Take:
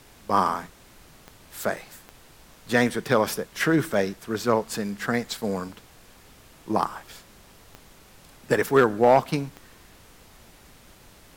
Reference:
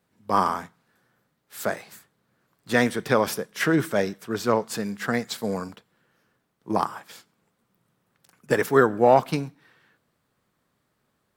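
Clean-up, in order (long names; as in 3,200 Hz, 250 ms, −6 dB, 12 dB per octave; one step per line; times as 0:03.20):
clipped peaks rebuilt −8.5 dBFS
click removal
broadband denoise 21 dB, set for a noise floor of −52 dBFS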